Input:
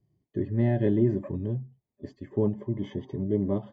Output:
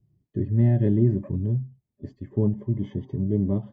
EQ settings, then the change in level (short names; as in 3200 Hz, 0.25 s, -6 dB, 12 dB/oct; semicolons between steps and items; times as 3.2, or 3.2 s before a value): tone controls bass +8 dB, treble -1 dB; low shelf 410 Hz +4.5 dB; -5.0 dB